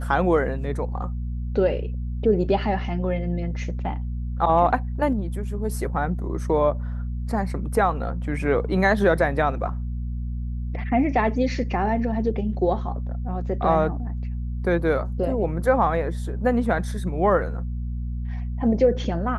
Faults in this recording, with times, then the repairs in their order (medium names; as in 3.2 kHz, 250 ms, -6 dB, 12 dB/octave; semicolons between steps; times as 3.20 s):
hum 60 Hz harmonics 4 -28 dBFS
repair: de-hum 60 Hz, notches 4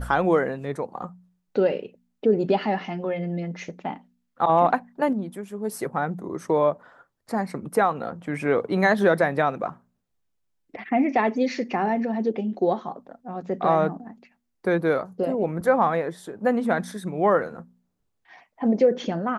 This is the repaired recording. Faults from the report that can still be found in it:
nothing left